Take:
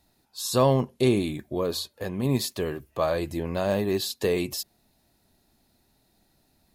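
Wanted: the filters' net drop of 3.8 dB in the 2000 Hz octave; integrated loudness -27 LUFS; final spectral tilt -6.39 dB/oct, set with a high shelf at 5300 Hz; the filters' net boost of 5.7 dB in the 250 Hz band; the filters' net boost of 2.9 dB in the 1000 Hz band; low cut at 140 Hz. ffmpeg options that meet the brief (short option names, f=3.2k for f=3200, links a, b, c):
-af "highpass=140,equalizer=f=250:t=o:g=7.5,equalizer=f=1k:t=o:g=4.5,equalizer=f=2k:t=o:g=-5.5,highshelf=f=5.3k:g=-5.5,volume=-3.5dB"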